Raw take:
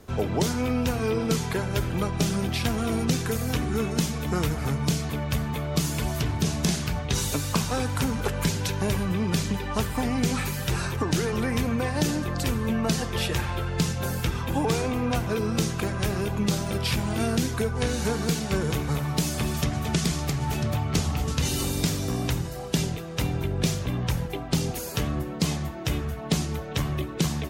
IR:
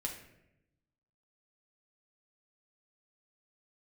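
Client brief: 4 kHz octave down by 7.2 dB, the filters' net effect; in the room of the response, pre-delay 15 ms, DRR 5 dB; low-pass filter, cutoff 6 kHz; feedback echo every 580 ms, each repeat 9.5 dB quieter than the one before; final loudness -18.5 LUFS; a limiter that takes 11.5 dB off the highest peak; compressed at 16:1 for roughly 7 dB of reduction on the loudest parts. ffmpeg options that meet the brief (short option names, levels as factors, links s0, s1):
-filter_complex "[0:a]lowpass=6000,equalizer=f=4000:t=o:g=-8.5,acompressor=threshold=0.0501:ratio=16,alimiter=limit=0.0631:level=0:latency=1,aecho=1:1:580|1160|1740|2320:0.335|0.111|0.0365|0.012,asplit=2[s0][s1];[1:a]atrim=start_sample=2205,adelay=15[s2];[s1][s2]afir=irnorm=-1:irlink=0,volume=0.531[s3];[s0][s3]amix=inputs=2:normalize=0,volume=4.47"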